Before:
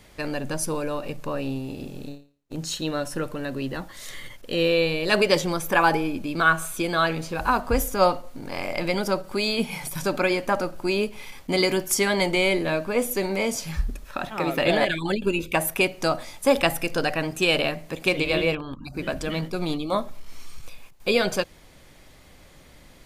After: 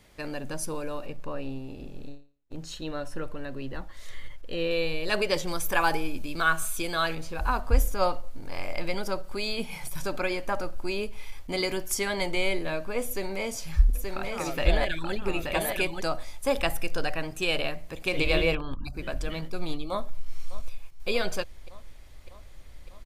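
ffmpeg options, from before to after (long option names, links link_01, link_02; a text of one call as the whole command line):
ffmpeg -i in.wav -filter_complex "[0:a]asettb=1/sr,asplit=3[link_01][link_02][link_03];[link_01]atrim=end=1.064[link_04];[link_02]atrim=start=1.06:end=4.71,asetpts=PTS-STARTPTS,afade=type=in:duration=0.004:curve=qsin,afade=type=out:start_time=3.646:duration=0.004:curve=qsin,highshelf=frequency=5100:gain=-9.5[link_05];[link_03]atrim=start=4.706[link_06];[link_04][link_05]acrossfade=duration=0.004:curve1=hsin:curve2=qsin[link_07];[link_07][link_06]acrossfade=duration=0.004:curve1=qsin:curve2=hsin,asettb=1/sr,asplit=3[link_08][link_09][link_10];[link_08]atrim=end=5.474[link_11];[link_09]atrim=start=5.47:end=7.15,asetpts=PTS-STARTPTS,afade=type=in:duration=0.004:curve=qsin,afade=type=out:start_time=1.676:duration=0.004:curve=qsin,highshelf=frequency=3300:gain=7.5[link_12];[link_10]atrim=start=7.146[link_13];[link_11][link_12]acrossfade=duration=0.004:curve1=hsin:curve2=qsin[link_14];[link_14][link_13]acrossfade=duration=0.004:curve1=qsin:curve2=hsin,asplit=3[link_15][link_16][link_17];[link_15]afade=type=out:start_time=13.93:duration=0.02[link_18];[link_16]aecho=1:1:878:0.631,afade=type=in:start_time=13.93:duration=0.02,afade=type=out:start_time=16:duration=0.02[link_19];[link_17]afade=type=in:start_time=16:duration=0.02[link_20];[link_18][link_19][link_20]amix=inputs=3:normalize=0,asettb=1/sr,asplit=3[link_21][link_22][link_23];[link_21]atrim=end=18.134[link_24];[link_22]atrim=start=18.13:end=18.91,asetpts=PTS-STARTPTS,afade=type=in:duration=0.004:curve=qsin,afade=type=out:start_time=0.776:duration=0.004:curve=qsin,acontrast=24[link_25];[link_23]atrim=start=18.906[link_26];[link_24][link_25]acrossfade=duration=0.004:curve1=hsin:curve2=qsin[link_27];[link_27][link_26]acrossfade=duration=0.004:curve1=qsin:curve2=hsin,asplit=2[link_28][link_29];[link_29]afade=type=in:start_time=19.9:duration=0.01,afade=type=out:start_time=21.08:duration=0.01,aecho=0:1:600|1200|1800|2400|3000|3600|4200|4800|5400|6000:0.149624|0.112218|0.0841633|0.0631224|0.0473418|0.0355064|0.0266298|0.0199723|0.0149793|0.0112344[link_30];[link_28][link_30]amix=inputs=2:normalize=0,asubboost=boost=5.5:cutoff=75,volume=-6dB" out.wav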